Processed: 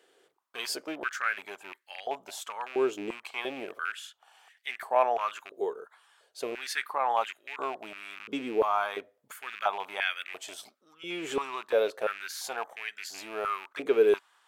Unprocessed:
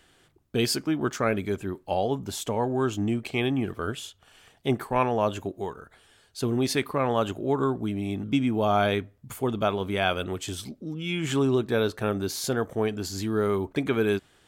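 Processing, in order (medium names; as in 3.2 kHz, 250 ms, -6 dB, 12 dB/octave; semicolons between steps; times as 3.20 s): rattle on loud lows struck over -31 dBFS, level -27 dBFS; 8.52–8.96 s: dynamic bell 3.2 kHz, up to -5 dB, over -41 dBFS, Q 0.82; step-sequenced high-pass 2.9 Hz 440–1900 Hz; trim -6.5 dB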